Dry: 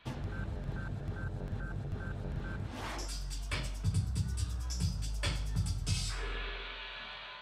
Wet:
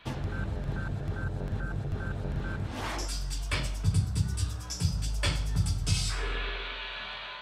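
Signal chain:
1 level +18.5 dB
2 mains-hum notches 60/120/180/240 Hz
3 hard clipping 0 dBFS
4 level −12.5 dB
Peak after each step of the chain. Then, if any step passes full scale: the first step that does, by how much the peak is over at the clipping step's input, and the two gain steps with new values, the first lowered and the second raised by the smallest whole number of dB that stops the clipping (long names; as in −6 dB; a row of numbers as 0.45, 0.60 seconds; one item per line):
−2.5, −2.0, −2.0, −14.5 dBFS
no step passes full scale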